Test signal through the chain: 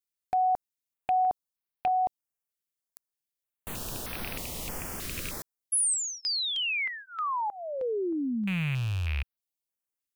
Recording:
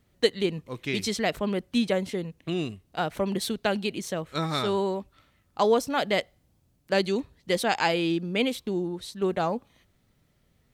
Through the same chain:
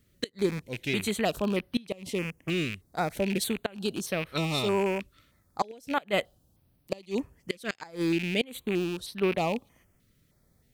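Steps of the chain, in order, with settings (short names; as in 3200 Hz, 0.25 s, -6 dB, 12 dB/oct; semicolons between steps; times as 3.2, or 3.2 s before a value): rattling part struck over -37 dBFS, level -23 dBFS; flipped gate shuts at -13 dBFS, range -25 dB; high shelf 7700 Hz +6.5 dB; stepped notch 3.2 Hz 830–7200 Hz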